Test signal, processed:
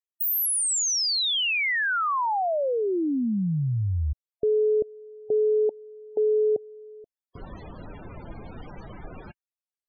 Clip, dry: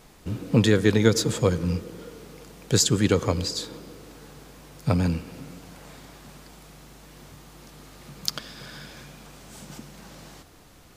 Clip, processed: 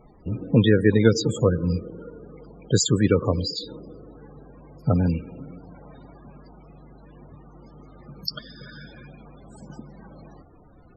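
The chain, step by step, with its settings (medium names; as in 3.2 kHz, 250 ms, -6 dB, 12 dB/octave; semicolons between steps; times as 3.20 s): loudest bins only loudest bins 32; trim +2 dB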